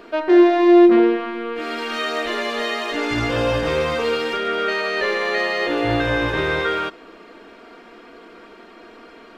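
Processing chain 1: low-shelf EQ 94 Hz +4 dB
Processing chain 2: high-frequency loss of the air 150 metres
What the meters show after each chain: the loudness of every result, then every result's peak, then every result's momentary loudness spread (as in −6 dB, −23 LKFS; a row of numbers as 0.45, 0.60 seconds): −18.5, −19.5 LKFS; −3.0, −3.5 dBFS; 12, 13 LU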